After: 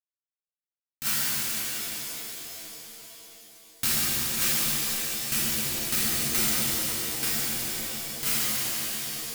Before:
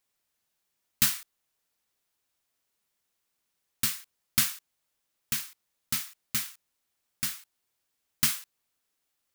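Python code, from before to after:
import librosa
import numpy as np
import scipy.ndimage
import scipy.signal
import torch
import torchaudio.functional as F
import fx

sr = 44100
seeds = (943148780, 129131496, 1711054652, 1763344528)

y = fx.power_curve(x, sr, exponent=2.0)
y = fx.over_compress(y, sr, threshold_db=-38.0, ratio=-1.0)
y = fx.rev_shimmer(y, sr, seeds[0], rt60_s=4.0, semitones=7, shimmer_db=-2, drr_db=-11.5)
y = F.gain(torch.from_numpy(y), 8.0).numpy()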